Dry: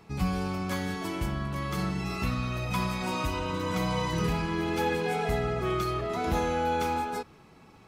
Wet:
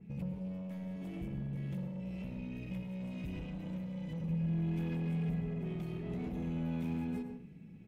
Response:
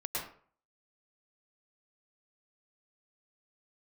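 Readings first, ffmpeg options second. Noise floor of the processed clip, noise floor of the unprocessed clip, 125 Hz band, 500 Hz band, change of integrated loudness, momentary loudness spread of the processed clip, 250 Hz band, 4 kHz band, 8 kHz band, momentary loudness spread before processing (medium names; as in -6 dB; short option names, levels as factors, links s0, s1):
-51 dBFS, -55 dBFS, -5.0 dB, -16.0 dB, -8.5 dB, 7 LU, -5.0 dB, under -20 dB, under -25 dB, 4 LU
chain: -filter_complex "[0:a]firequalizer=gain_entry='entry(110,0);entry(180,13);entry(310,-1);entry(1100,-23);entry(1700,-8);entry(2500,-3);entry(4300,-18);entry(7600,-14);entry(15000,-10)':delay=0.05:min_phase=1,acompressor=threshold=0.0355:ratio=6,asoftclip=type=tanh:threshold=0.0237,asplit=2[s0][s1];[1:a]atrim=start_sample=2205,lowshelf=f=460:g=9.5[s2];[s1][s2]afir=irnorm=-1:irlink=0,volume=0.355[s3];[s0][s3]amix=inputs=2:normalize=0,adynamicequalizer=threshold=0.00141:dfrequency=2700:dqfactor=0.7:tfrequency=2700:tqfactor=0.7:attack=5:release=100:ratio=0.375:range=2:mode=boostabove:tftype=highshelf,volume=0.398"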